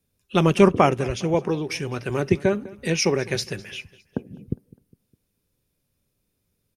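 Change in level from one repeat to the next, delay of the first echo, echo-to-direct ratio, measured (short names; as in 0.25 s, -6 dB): -6.5 dB, 0.204 s, -20.5 dB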